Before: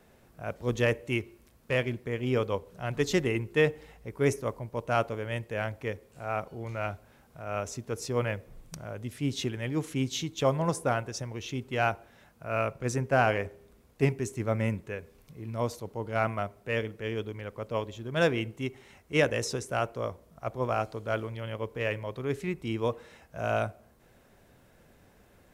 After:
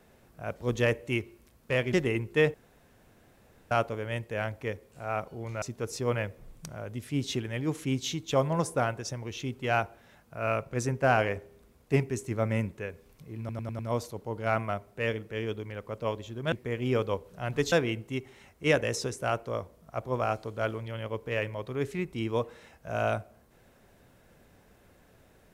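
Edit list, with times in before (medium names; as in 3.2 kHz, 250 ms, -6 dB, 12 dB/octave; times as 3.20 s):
1.93–3.13 s: move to 18.21 s
3.74–4.91 s: room tone
6.82–7.71 s: delete
15.48 s: stutter 0.10 s, 5 plays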